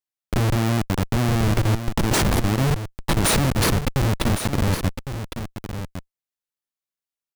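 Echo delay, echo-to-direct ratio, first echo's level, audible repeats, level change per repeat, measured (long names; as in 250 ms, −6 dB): 1,108 ms, −9.5 dB, −9.5 dB, 1, repeats not evenly spaced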